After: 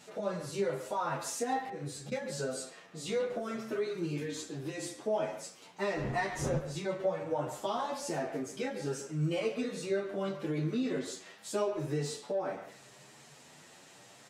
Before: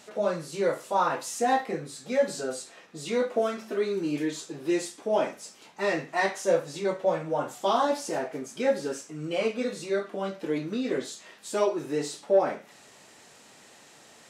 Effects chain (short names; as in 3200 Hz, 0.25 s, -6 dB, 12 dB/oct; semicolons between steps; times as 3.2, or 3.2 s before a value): 5.95–6.57 wind noise 480 Hz -27 dBFS; 9.21–9.61 high shelf 8100 Hz +5.5 dB; on a send: frequency-shifting echo 86 ms, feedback 31%, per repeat -44 Hz, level -21 dB; 1.61–2.12 on the sum: auto swell 0.16 s; compressor 6:1, threshold -27 dBFS, peak gain reduction 10.5 dB; bell 140 Hz +12.5 dB 0.34 oct; speakerphone echo 0.14 s, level -10 dB; endless flanger 8.7 ms +0.73 Hz